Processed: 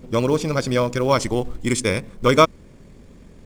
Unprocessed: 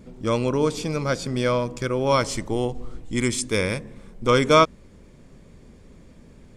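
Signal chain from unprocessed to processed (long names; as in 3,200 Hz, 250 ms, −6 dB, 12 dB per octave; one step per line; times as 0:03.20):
tempo change 1.9×
in parallel at −10 dB: floating-point word with a short mantissa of 2 bits
on the sum: level +1 dB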